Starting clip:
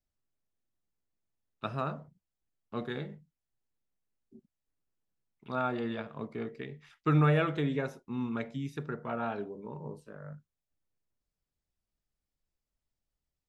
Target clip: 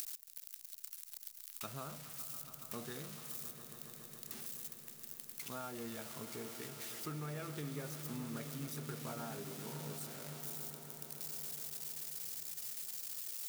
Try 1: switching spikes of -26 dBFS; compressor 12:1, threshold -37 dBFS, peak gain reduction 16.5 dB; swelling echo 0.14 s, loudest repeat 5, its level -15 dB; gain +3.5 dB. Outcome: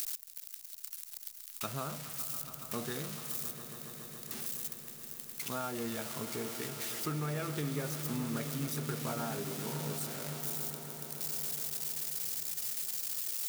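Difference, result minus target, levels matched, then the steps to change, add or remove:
compressor: peak gain reduction -7.5 dB
change: compressor 12:1, threshold -45 dBFS, peak gain reduction 24 dB

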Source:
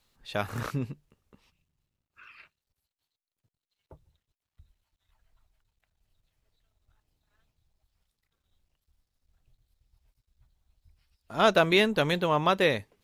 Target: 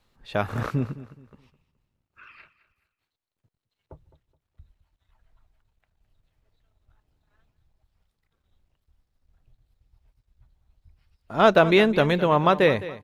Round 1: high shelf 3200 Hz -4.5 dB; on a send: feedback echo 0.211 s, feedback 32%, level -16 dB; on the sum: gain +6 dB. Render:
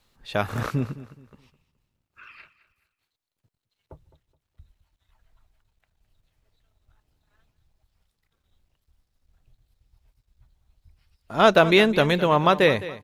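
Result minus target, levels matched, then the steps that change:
8000 Hz band +5.5 dB
change: high shelf 3200 Hz -12 dB

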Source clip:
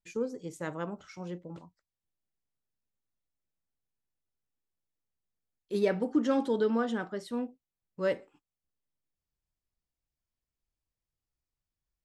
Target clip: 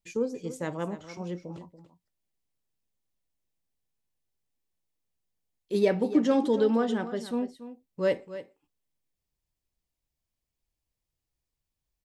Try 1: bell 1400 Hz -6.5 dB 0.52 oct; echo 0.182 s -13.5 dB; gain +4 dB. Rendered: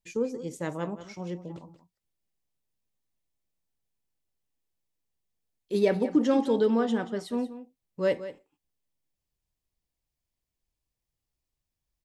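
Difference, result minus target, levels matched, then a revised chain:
echo 0.103 s early
bell 1400 Hz -6.5 dB 0.52 oct; echo 0.285 s -13.5 dB; gain +4 dB

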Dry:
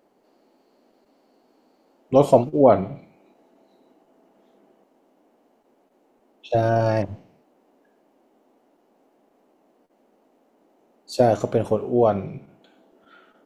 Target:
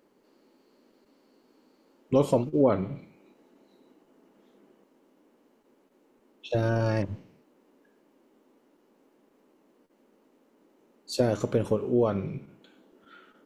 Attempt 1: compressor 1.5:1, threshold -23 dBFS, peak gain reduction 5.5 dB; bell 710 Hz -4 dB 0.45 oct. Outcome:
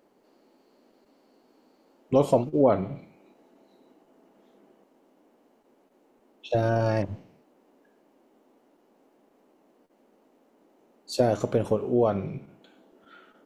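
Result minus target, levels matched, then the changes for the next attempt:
1000 Hz band +3.0 dB
change: bell 710 Hz -12 dB 0.45 oct

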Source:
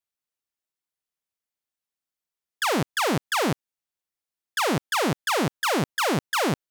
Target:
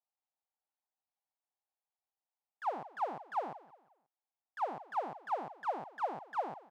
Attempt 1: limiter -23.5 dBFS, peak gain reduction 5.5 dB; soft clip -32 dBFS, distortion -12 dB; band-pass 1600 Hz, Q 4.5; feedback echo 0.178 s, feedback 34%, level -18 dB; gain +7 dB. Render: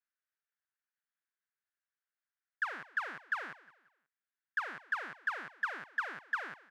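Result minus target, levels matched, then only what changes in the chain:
2000 Hz band +14.5 dB
change: band-pass 800 Hz, Q 4.5

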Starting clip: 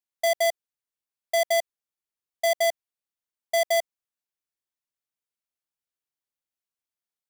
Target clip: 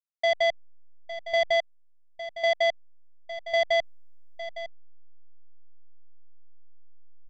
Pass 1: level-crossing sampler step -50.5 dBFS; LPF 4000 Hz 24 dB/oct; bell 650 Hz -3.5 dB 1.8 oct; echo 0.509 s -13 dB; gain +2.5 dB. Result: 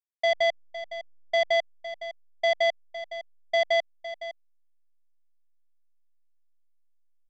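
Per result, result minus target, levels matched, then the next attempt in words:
level-crossing sampler: distortion -14 dB; echo 0.349 s early
level-crossing sampler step -43.5 dBFS; LPF 4000 Hz 24 dB/oct; bell 650 Hz -3.5 dB 1.8 oct; echo 0.509 s -13 dB; gain +2.5 dB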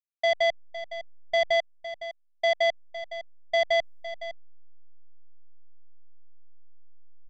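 echo 0.349 s early
level-crossing sampler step -43.5 dBFS; LPF 4000 Hz 24 dB/oct; bell 650 Hz -3.5 dB 1.8 oct; echo 0.858 s -13 dB; gain +2.5 dB

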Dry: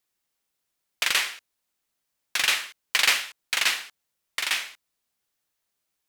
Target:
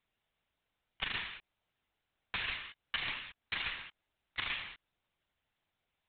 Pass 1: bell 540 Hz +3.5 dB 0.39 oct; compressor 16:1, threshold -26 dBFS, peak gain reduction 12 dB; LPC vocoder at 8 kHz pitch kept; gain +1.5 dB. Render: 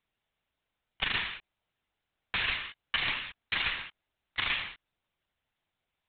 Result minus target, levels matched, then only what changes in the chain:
compressor: peak gain reduction -7 dB
change: compressor 16:1, threshold -33.5 dBFS, peak gain reduction 19 dB

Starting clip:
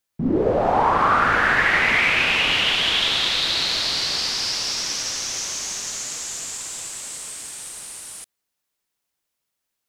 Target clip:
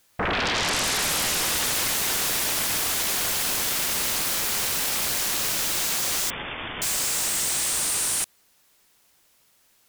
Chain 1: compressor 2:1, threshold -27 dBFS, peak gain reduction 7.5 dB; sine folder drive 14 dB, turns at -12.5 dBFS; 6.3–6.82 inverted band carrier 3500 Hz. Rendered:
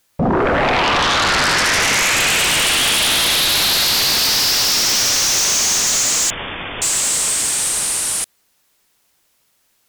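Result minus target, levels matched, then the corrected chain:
sine folder: distortion -22 dB
compressor 2:1, threshold -27 dBFS, peak gain reduction 7.5 dB; sine folder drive 14 dB, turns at -21.5 dBFS; 6.3–6.82 inverted band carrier 3500 Hz

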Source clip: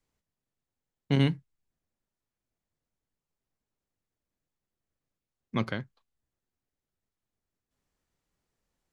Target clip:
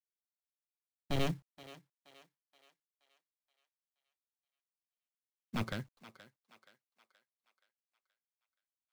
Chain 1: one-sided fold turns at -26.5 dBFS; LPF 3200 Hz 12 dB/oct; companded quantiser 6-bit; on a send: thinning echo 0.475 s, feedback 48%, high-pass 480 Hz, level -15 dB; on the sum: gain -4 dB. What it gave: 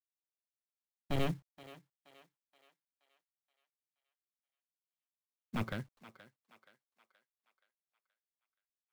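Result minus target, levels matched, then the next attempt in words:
4000 Hz band -3.0 dB
one-sided fold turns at -26.5 dBFS; companded quantiser 6-bit; on a send: thinning echo 0.475 s, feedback 48%, high-pass 480 Hz, level -15 dB; on the sum: gain -4 dB

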